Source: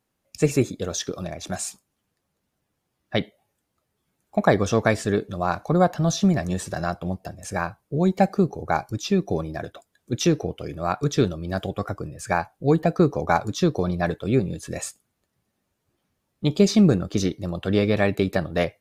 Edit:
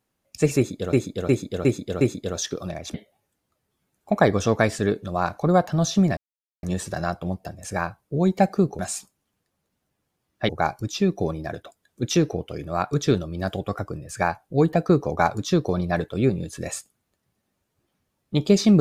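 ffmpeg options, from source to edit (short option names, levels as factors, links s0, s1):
-filter_complex "[0:a]asplit=9[s0][s1][s2][s3][s4][s5][s6][s7][s8];[s0]atrim=end=0.932[s9];[s1]atrim=start=0.568:end=0.932[s10];[s2]atrim=start=0.568:end=0.932[s11];[s3]atrim=start=0.568:end=0.932[s12];[s4]atrim=start=0.568:end=1.502[s13];[s5]atrim=start=3.198:end=6.43,asetpts=PTS-STARTPTS,afade=t=out:st=3.228:d=0.004:c=hsin,apad=pad_dur=0.46[s14];[s6]atrim=start=6.43:end=8.592,asetpts=PTS-STARTPTS,afade=t=in:d=0.004:c=hsin[s15];[s7]atrim=start=1.498:end=3.202[s16];[s8]atrim=start=8.588[s17];[s9][s10]acrossfade=d=0.004:c1=hsin:c2=hsin[s18];[s18][s11]acrossfade=d=0.004:c1=hsin:c2=hsin[s19];[s19][s12]acrossfade=d=0.004:c1=hsin:c2=hsin[s20];[s20][s13]acrossfade=d=0.004:c1=hsin:c2=hsin[s21];[s14][s15]concat=n=2:v=0:a=1[s22];[s21][s22]acrossfade=d=0.004:c1=hsin:c2=hsin[s23];[s23][s16]acrossfade=d=0.004:c1=hsin:c2=hsin[s24];[s24][s17]acrossfade=d=0.004:c1=hsin:c2=hsin"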